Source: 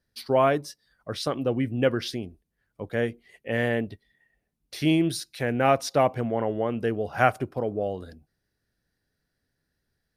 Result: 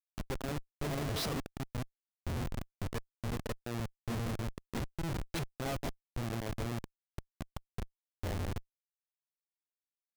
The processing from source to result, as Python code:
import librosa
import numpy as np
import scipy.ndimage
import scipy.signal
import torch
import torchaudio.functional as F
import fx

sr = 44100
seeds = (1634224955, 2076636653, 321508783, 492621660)

y = fx.peak_eq(x, sr, hz=87.0, db=10.5, octaves=2.2)
y = fx.transient(y, sr, attack_db=7, sustain_db=3)
y = fx.leveller(y, sr, passes=1)
y = fx.auto_swell(y, sr, attack_ms=362.0)
y = fx.echo_bbd(y, sr, ms=157, stages=1024, feedback_pct=65, wet_db=-15.0)
y = fx.gate_flip(y, sr, shuts_db=-23.0, range_db=-25)
y = fx.schmitt(y, sr, flips_db=-43.0)
y = y * librosa.db_to_amplitude(9.5)